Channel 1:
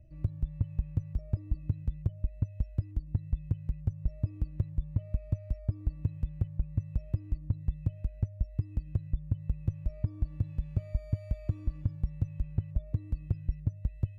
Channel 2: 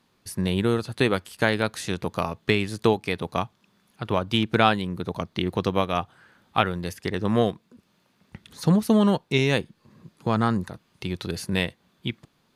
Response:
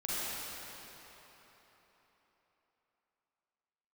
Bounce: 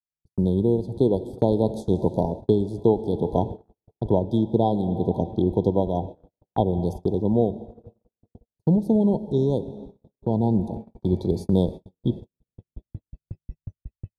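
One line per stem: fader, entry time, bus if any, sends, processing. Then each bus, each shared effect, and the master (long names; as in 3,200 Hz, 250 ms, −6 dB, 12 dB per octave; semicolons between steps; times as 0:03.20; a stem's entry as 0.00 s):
0.0 dB, 0.00 s, muted 0:04.28–0:05.20, send −16.5 dB, tuned comb filter 810 Hz, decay 0.4 s, mix 60%; automatic ducking −6 dB, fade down 0.30 s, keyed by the second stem
+2.5 dB, 0.00 s, send −18 dB, high-pass filter 59 Hz 12 dB per octave; brick-wall band-stop 1,000–3,200 Hz; drawn EQ curve 220 Hz 0 dB, 380 Hz +2 dB, 3,600 Hz −18 dB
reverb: on, RT60 4.1 s, pre-delay 36 ms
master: noise gate −33 dBFS, range −55 dB; speech leveller within 4 dB 0.5 s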